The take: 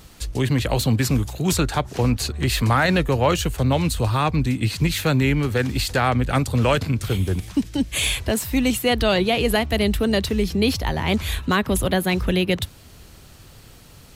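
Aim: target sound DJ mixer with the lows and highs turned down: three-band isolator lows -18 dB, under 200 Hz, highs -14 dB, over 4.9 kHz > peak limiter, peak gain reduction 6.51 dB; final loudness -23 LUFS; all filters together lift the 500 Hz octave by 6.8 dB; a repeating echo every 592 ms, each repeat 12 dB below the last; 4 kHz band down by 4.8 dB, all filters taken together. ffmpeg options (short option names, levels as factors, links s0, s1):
-filter_complex "[0:a]acrossover=split=200 4900:gain=0.126 1 0.2[s0][s1][s2];[s0][s1][s2]amix=inputs=3:normalize=0,equalizer=f=500:t=o:g=8.5,equalizer=f=4000:t=o:g=-4.5,aecho=1:1:592|1184|1776:0.251|0.0628|0.0157,volume=0.891,alimiter=limit=0.282:level=0:latency=1"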